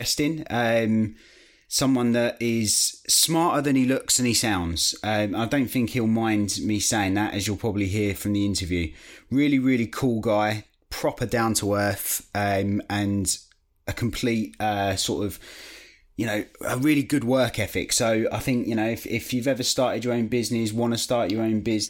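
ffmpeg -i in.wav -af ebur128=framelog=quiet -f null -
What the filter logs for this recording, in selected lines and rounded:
Integrated loudness:
  I:         -23.6 LUFS
  Threshold: -33.9 LUFS
Loudness range:
  LRA:         4.7 LU
  Threshold: -43.9 LUFS
  LRA low:   -25.9 LUFS
  LRA high:  -21.2 LUFS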